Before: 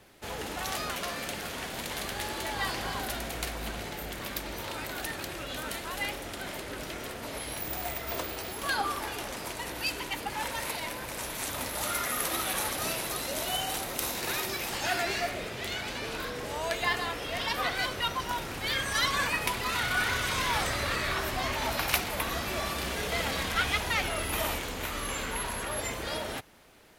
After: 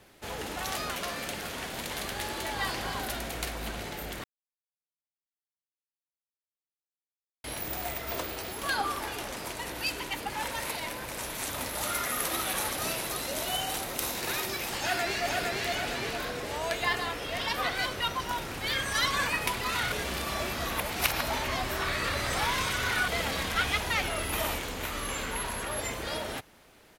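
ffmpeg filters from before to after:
-filter_complex "[0:a]asplit=2[a][b];[b]afade=t=in:st=14.78:d=0.01,afade=t=out:st=15.64:d=0.01,aecho=0:1:460|920|1380|1840|2300|2760|3220:0.749894|0.374947|0.187474|0.0937368|0.0468684|0.0234342|0.0117171[c];[a][c]amix=inputs=2:normalize=0,asplit=5[d][e][f][g][h];[d]atrim=end=4.24,asetpts=PTS-STARTPTS,afade=t=out:st=4.236:d=0.004:c=hsin[i];[e]atrim=start=4.24:end=7.44,asetpts=PTS-STARTPTS,volume=0[j];[f]atrim=start=7.44:end=19.922,asetpts=PTS-STARTPTS,afade=t=in:d=0.004:c=hsin[k];[g]atrim=start=19.918:end=23.082,asetpts=PTS-STARTPTS,areverse[l];[h]atrim=start=23.078[m];[i][j][k]concat=n=3:v=0:a=1[n];[n][l]acrossfade=d=0.004:c1=hsin:c2=hsin[o];[o][m]acrossfade=d=0.004:c1=hsin:c2=hsin"

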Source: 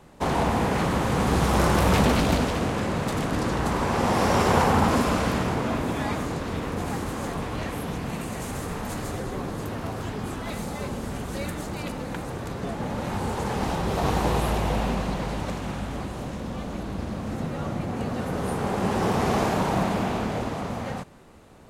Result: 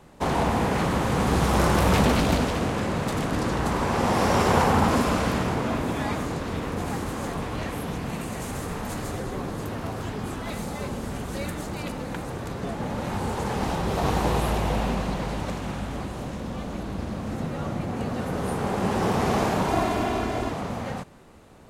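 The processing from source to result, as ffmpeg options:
-filter_complex "[0:a]asettb=1/sr,asplit=3[a][b][c];[a]atrim=end=19.684[d];[b]atrim=start=19.68:end=20.52,asetpts=PTS-STARTPTS,afade=t=in:d=0.004:c=qsin,afade=t=out:st=0.836:d=0.004:c=qsin,aecho=1:1:2.9:0.65,atrim=end_sample=37044[e];[c]atrim=start=20.516[f];[d][e]acrossfade=d=0.004:c1=hsin:c2=qsin[g];[g][f]acrossfade=d=0.004:c1=qsin:c2=hsin"

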